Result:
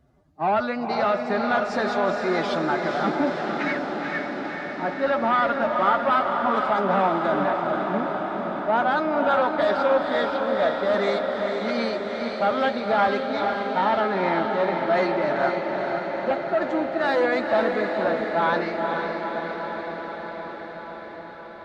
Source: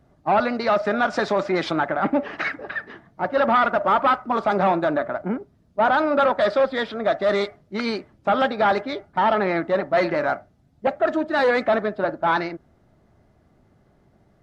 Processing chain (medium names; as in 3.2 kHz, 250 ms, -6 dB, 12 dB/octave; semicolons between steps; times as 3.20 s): time stretch by phase-locked vocoder 1.5×; on a send: echo that smears into a reverb 477 ms, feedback 74%, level -4.5 dB; on the sum: trim -3.5 dB